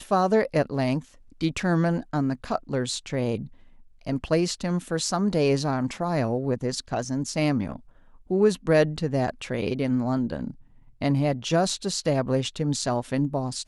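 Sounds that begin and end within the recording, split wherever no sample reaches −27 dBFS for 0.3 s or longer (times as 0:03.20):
0:01.42–0:03.42
0:04.07–0:07.76
0:08.31–0:10.50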